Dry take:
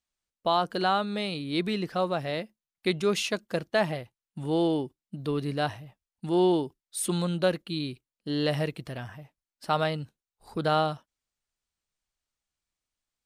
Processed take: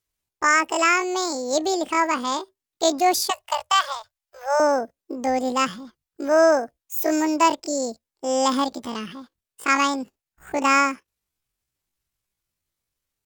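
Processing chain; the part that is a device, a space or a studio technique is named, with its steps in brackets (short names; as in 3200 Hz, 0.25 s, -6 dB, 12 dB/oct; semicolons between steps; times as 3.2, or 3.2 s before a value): chipmunk voice (pitch shift +10 st); 3.3–4.6 Chebyshev band-stop 110–590 Hz, order 3; gain +6.5 dB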